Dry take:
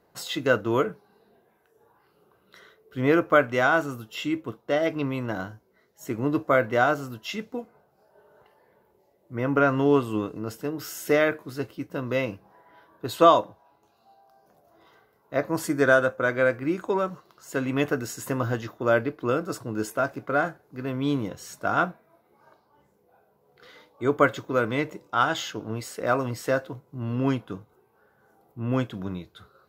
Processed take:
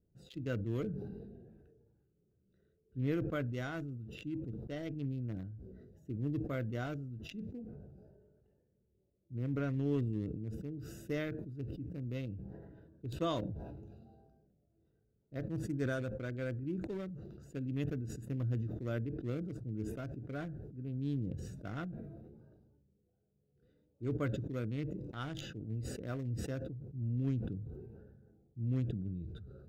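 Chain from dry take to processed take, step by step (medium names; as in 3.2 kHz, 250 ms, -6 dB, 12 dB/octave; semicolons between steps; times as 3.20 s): local Wiener filter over 41 samples; amplifier tone stack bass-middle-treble 10-0-1; decay stretcher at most 32 dB/s; trim +7.5 dB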